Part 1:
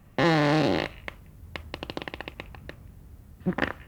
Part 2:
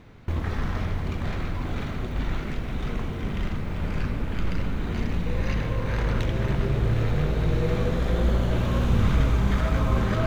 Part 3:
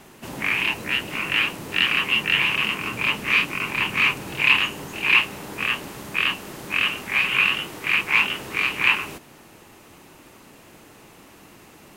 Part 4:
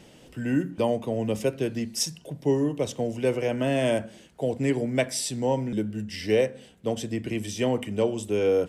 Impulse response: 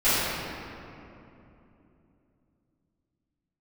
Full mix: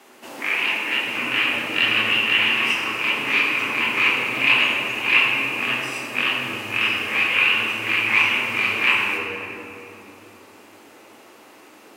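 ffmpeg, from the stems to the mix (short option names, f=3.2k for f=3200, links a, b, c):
-filter_complex "[0:a]adelay=1350,volume=-17dB[a];[2:a]highpass=270,highshelf=f=9.9k:g=-3.5,volume=-3dB,asplit=2[b][c];[c]volume=-15dB[d];[3:a]aecho=1:1:1:0.49,acompressor=threshold=-26dB:ratio=6,adelay=700,volume=-15dB,asplit=2[e][f];[f]volume=-11dB[g];[4:a]atrim=start_sample=2205[h];[d][g]amix=inputs=2:normalize=0[i];[i][h]afir=irnorm=-1:irlink=0[j];[a][b][e][j]amix=inputs=4:normalize=0,highpass=67,equalizer=f=160:t=o:w=0.48:g=-11"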